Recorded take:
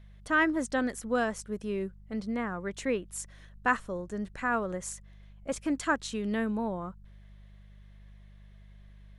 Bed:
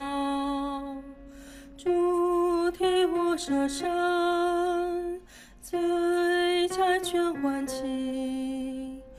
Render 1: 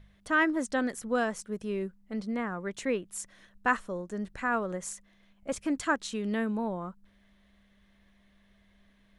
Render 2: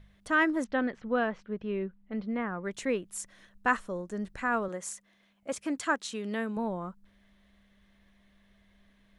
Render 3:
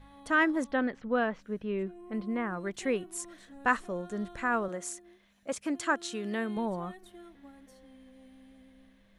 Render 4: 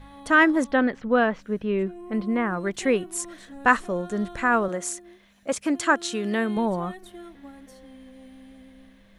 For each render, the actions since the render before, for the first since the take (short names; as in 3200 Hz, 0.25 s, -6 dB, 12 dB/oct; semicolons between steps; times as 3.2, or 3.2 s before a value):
de-hum 50 Hz, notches 3
0.64–2.64 LPF 3400 Hz 24 dB/oct; 4.68–6.57 HPF 270 Hz 6 dB/oct
add bed -24.5 dB
gain +8 dB